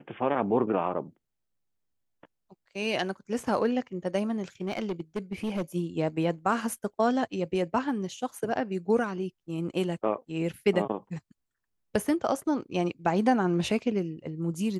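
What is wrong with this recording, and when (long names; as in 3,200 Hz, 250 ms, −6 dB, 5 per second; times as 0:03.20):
0:04.35–0:05.62: clipping −26 dBFS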